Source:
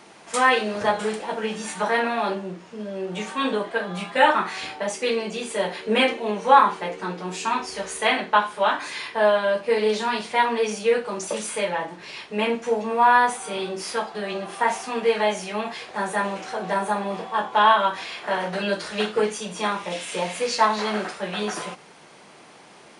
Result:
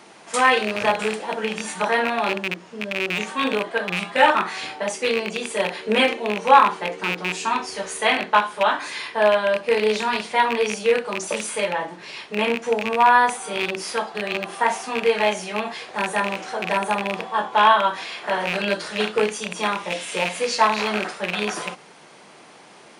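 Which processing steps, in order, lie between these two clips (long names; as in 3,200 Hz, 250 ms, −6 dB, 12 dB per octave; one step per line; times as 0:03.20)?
loose part that buzzes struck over −34 dBFS, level −14 dBFS
low-shelf EQ 69 Hz −10.5 dB
level +1.5 dB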